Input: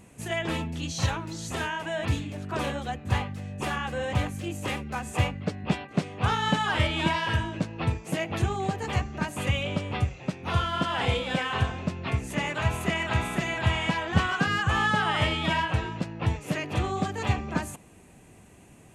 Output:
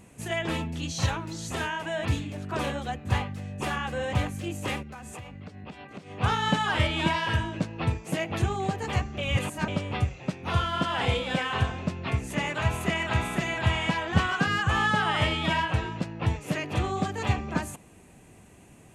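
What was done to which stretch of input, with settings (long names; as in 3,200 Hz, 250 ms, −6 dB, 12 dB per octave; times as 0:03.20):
0:04.82–0:06.11: downward compressor 16 to 1, threshold −37 dBFS
0:09.18–0:09.68: reverse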